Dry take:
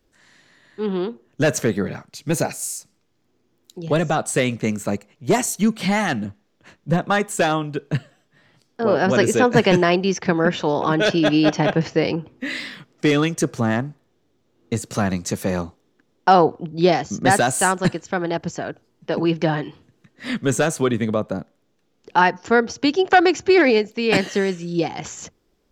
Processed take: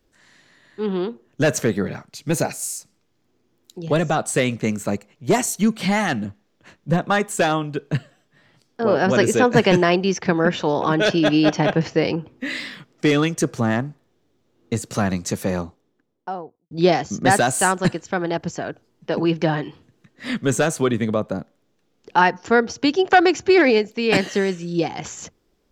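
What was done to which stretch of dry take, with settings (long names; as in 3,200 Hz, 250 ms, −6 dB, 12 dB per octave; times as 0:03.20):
0:15.33–0:16.71: fade out and dull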